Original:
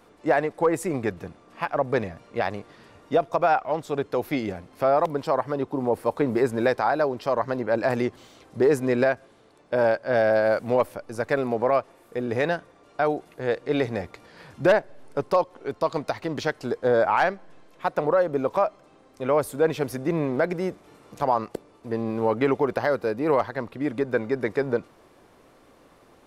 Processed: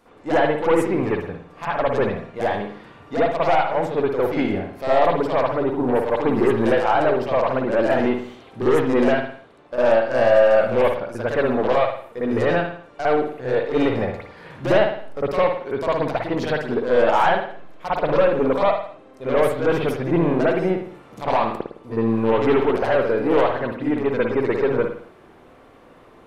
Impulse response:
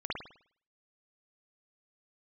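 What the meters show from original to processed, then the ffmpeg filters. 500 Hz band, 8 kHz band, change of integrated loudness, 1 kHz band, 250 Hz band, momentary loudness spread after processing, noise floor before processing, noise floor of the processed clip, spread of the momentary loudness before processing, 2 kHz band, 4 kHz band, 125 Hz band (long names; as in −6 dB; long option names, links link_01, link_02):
+4.5 dB, can't be measured, +4.5 dB, +4.0 dB, +5.5 dB, 10 LU, −56 dBFS, −48 dBFS, 10 LU, +3.5 dB, +6.5 dB, +4.5 dB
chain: -filter_complex "[0:a]aeval=exprs='0.299*(cos(1*acos(clip(val(0)/0.299,-1,1)))-cos(1*PI/2))+0.0266*(cos(4*acos(clip(val(0)/0.299,-1,1)))-cos(4*PI/2))+0.0668*(cos(5*acos(clip(val(0)/0.299,-1,1)))-cos(5*PI/2))+0.0188*(cos(7*acos(clip(val(0)/0.299,-1,1)))-cos(7*PI/2))':channel_layout=same[link_01];[1:a]atrim=start_sample=2205,afade=type=out:start_time=0.38:duration=0.01,atrim=end_sample=17199,asetrate=42336,aresample=44100[link_02];[link_01][link_02]afir=irnorm=-1:irlink=0,volume=-3.5dB"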